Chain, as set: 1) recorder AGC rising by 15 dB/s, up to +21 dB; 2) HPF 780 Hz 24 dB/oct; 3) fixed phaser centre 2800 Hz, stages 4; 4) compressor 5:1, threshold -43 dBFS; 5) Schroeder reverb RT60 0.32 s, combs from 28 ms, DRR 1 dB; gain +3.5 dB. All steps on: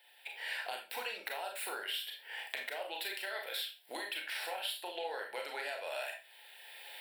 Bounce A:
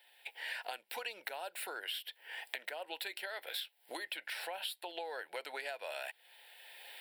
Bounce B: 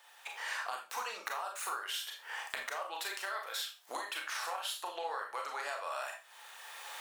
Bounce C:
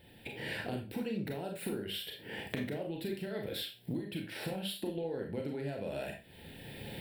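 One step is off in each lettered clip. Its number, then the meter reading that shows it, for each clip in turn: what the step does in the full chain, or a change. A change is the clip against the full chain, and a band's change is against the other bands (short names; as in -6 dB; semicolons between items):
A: 5, crest factor change +2.5 dB; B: 3, 8 kHz band +6.5 dB; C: 2, crest factor change -2.5 dB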